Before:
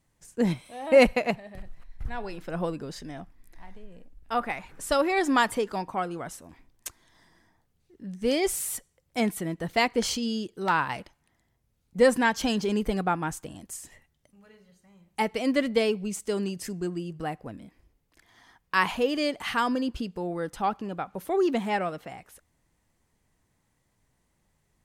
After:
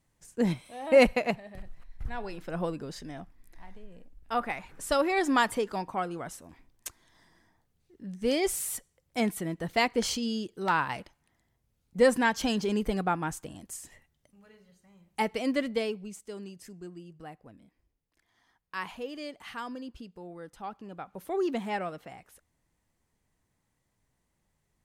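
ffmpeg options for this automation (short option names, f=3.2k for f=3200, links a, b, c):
-af "volume=5.5dB,afade=t=out:st=15.3:d=0.93:silence=0.298538,afade=t=in:st=20.69:d=0.67:silence=0.421697"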